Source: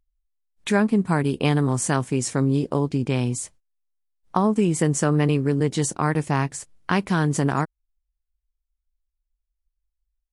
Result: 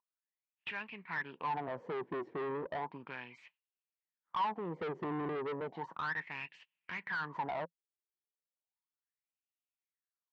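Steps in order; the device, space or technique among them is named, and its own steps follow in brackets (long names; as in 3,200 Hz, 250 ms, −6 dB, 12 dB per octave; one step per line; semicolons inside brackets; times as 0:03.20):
wah-wah guitar rig (LFO wah 0.34 Hz 360–2,800 Hz, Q 7.8; tube saturation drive 41 dB, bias 0.3; loudspeaker in its box 100–3,800 Hz, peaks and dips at 170 Hz +7 dB, 950 Hz +9 dB, 1,800 Hz +5 dB)
0:06.31–0:07.02: dynamic equaliser 1,100 Hz, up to −5 dB, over −58 dBFS, Q 0.92
level +4.5 dB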